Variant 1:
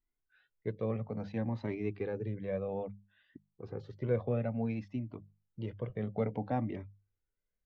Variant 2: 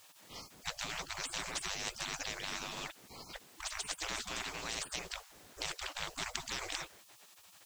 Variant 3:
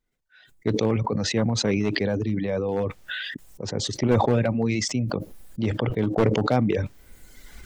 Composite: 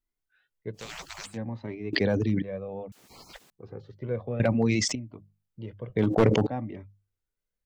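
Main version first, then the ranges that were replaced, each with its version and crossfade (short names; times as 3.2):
1
0.81–1.3 from 2, crossfade 0.16 s
1.93–2.42 from 3
2.92–3.5 from 2
4.4–4.95 from 3
5.96–6.47 from 3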